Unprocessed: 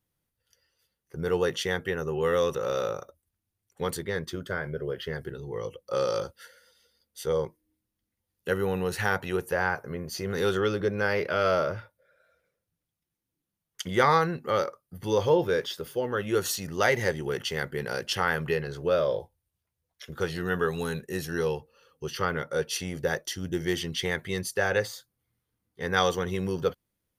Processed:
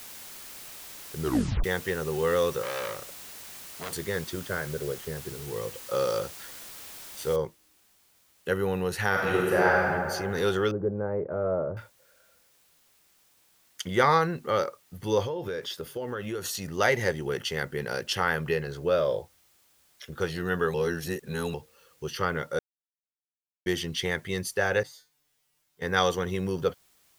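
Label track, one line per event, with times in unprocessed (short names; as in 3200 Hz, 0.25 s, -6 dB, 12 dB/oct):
1.200000	1.200000	tape stop 0.44 s
2.620000	3.920000	core saturation saturates under 2500 Hz
4.920000	5.470000	tape spacing loss at 10 kHz 45 dB
7.360000	7.360000	noise floor step -44 dB -64 dB
9.100000	9.860000	reverb throw, RT60 2 s, DRR -4 dB
10.710000	11.770000	Bessel low-pass 660 Hz, order 4
15.230000	16.550000	compressor, threshold -29 dBFS
20.740000	21.540000	reverse
22.590000	23.660000	mute
24.830000	25.820000	resonator 150 Hz, decay 0.25 s, mix 90%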